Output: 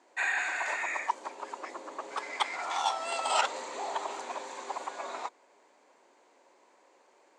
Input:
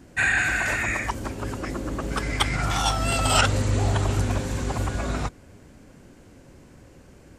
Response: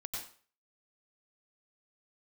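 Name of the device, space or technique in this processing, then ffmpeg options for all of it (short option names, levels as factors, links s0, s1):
phone speaker on a table: -af "highpass=f=450:w=0.5412,highpass=f=450:w=1.3066,equalizer=f=500:t=q:w=4:g=-4,equalizer=f=940:t=q:w=4:g=8,equalizer=f=1500:t=q:w=4:g=-6,equalizer=f=2900:t=q:w=4:g=-5,equalizer=f=5400:t=q:w=4:g=-7,lowpass=f=7200:w=0.5412,lowpass=f=7200:w=1.3066,volume=0.531"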